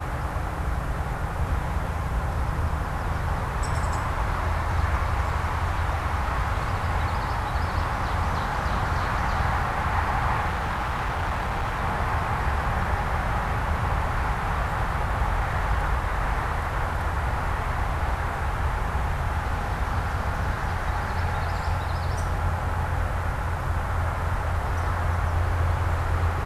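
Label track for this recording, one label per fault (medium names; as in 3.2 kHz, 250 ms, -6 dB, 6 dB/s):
10.470000	11.820000	clipped -23 dBFS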